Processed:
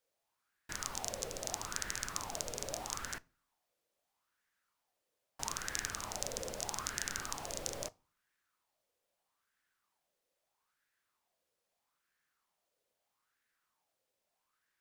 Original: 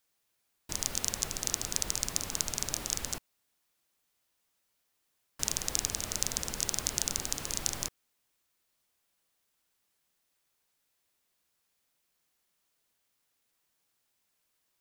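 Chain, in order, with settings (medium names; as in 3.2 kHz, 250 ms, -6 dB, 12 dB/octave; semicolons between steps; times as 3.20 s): treble shelf 11 kHz -5 dB; reverberation RT60 0.40 s, pre-delay 8 ms, DRR 19.5 dB; sweeping bell 0.78 Hz 500–1700 Hz +16 dB; trim -7.5 dB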